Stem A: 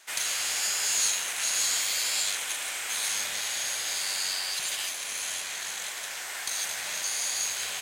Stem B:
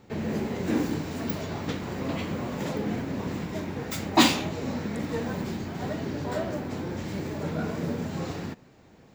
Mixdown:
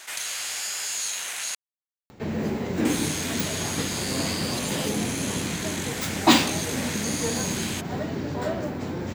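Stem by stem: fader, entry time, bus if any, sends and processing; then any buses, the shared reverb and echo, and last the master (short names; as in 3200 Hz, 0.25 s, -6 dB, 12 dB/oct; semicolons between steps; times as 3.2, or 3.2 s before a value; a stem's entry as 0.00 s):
-4.5 dB, 0.00 s, muted 1.55–2.85, no send, fast leveller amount 50%
+2.0 dB, 2.10 s, no send, upward compressor, threshold -47 dBFS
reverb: off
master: dry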